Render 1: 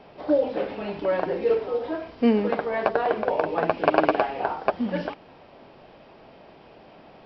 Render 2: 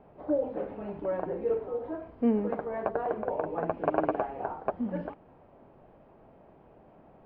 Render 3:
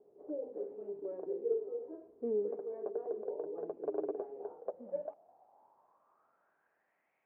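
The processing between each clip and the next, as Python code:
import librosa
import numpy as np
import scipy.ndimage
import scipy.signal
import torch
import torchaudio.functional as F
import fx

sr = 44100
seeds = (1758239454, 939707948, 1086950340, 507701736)

y1 = scipy.signal.sosfilt(scipy.signal.butter(2, 1300.0, 'lowpass', fs=sr, output='sos'), x)
y1 = fx.low_shelf(y1, sr, hz=150.0, db=7.5)
y1 = y1 * librosa.db_to_amplitude(-7.5)
y2 = fx.filter_sweep_bandpass(y1, sr, from_hz=410.0, to_hz=2200.0, start_s=4.39, end_s=7.15, q=7.4)
y2 = y2 * librosa.db_to_amplitude(1.0)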